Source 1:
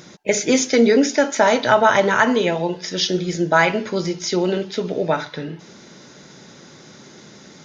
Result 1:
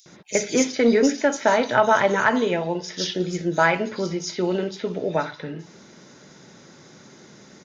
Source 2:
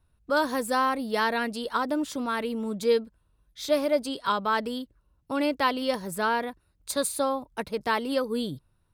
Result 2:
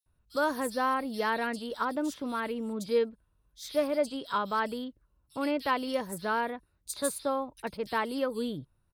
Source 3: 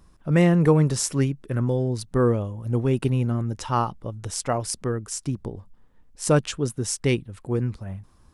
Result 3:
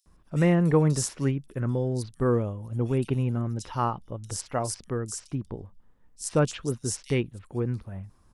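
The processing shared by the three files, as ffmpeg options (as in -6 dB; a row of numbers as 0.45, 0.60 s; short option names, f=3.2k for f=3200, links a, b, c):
-filter_complex "[0:a]acrossover=split=3700[a][b];[a]adelay=60[c];[c][b]amix=inputs=2:normalize=0,aeval=exprs='0.668*(cos(1*acos(clip(val(0)/0.668,-1,1)))-cos(1*PI/2))+0.0299*(cos(3*acos(clip(val(0)/0.668,-1,1)))-cos(3*PI/2))':c=same,volume=-2.5dB"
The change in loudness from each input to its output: -3.5, -4.0, -4.0 LU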